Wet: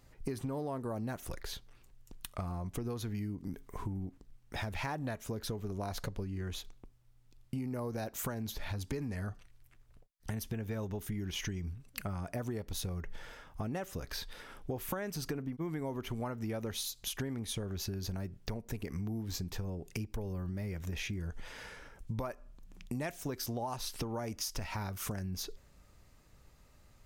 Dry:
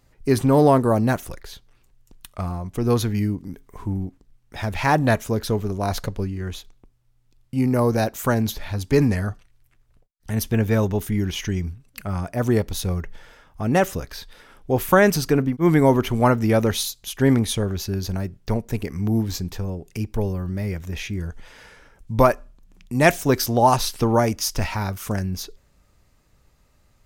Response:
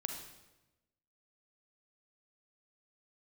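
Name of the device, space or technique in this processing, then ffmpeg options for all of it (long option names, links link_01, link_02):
serial compression, peaks first: -af "acompressor=threshold=-28dB:ratio=5,acompressor=threshold=-35dB:ratio=2.5,volume=-1.5dB"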